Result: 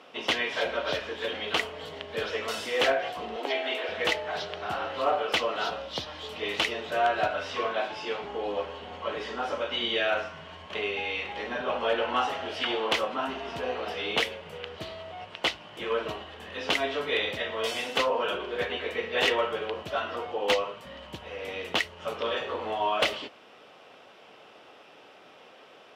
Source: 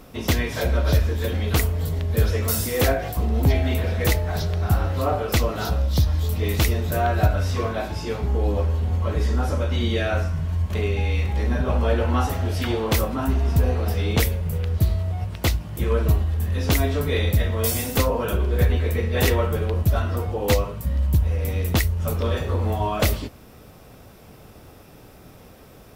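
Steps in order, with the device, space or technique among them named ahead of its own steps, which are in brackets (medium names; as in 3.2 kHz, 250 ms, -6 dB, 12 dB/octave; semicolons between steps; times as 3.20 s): megaphone (band-pass 520–3700 Hz; peaking EQ 3 kHz +9 dB 0.35 oct; hard clipper -16 dBFS, distortion -25 dB); 3.36–3.89 s: steep high-pass 280 Hz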